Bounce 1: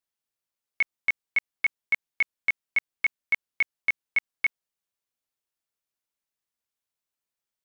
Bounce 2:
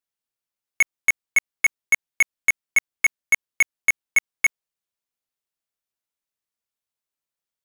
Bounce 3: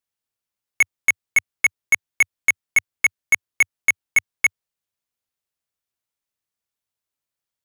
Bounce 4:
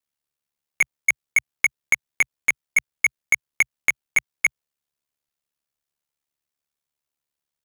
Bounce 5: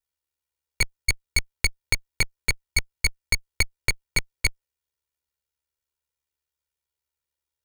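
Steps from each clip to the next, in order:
waveshaping leveller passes 3; trim +4.5 dB
peaking EQ 95 Hz +6.5 dB 0.8 oct; trim +1.5 dB
ring modulator 36 Hz; compression, threshold -17 dBFS, peak gain reduction 4 dB; trim +3 dB
comb filter that takes the minimum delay 2.1 ms; trim -1 dB

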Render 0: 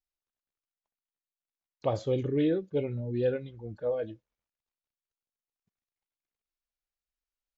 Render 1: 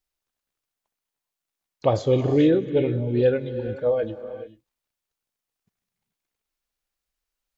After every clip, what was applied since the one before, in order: gated-style reverb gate 460 ms rising, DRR 10.5 dB; trim +8.5 dB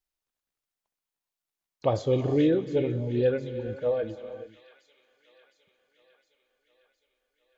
feedback echo behind a high-pass 711 ms, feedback 63%, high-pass 1.9 kHz, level -12 dB; trim -4.5 dB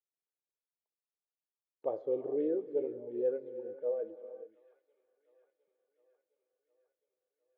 ladder band-pass 500 Hz, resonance 45%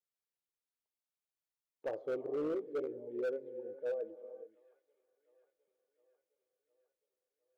hard clipper -29 dBFS, distortion -14 dB; trim -2.5 dB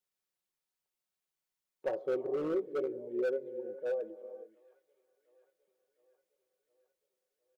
comb 5.4 ms, depth 44%; trim +3 dB

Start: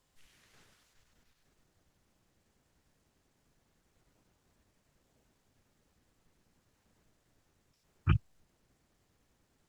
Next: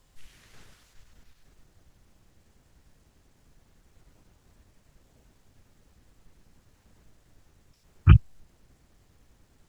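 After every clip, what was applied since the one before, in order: bass shelf 92 Hz +11 dB; trim +8 dB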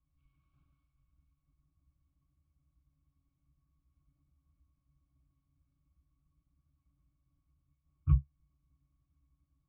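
static phaser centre 1.9 kHz, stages 6; pitch-class resonator C#, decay 0.12 s; trim -6 dB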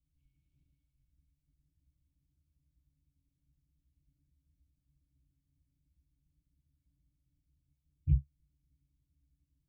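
Butterworth band-stop 1.1 kHz, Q 0.54; trim -1.5 dB

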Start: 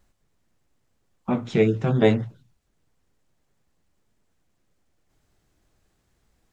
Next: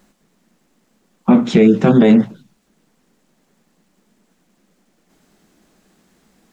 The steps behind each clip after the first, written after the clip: resonant low shelf 140 Hz -11.5 dB, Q 3; loudness maximiser +14 dB; trim -1 dB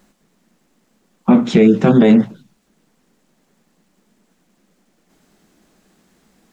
no audible change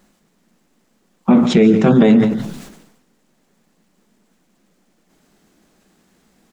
multi-tap echo 143/171 ms -17/-17.5 dB; decay stretcher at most 60 dB/s; trim -1 dB

